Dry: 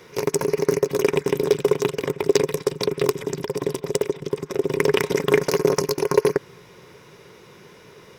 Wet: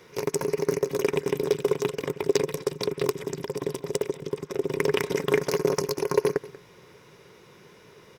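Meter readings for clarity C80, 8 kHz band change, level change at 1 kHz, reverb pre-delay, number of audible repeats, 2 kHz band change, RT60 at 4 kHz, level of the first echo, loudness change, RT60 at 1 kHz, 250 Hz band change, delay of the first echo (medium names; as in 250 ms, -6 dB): no reverb, -5.0 dB, -5.0 dB, no reverb, 1, -5.0 dB, no reverb, -18.5 dB, -5.0 dB, no reverb, -5.0 dB, 187 ms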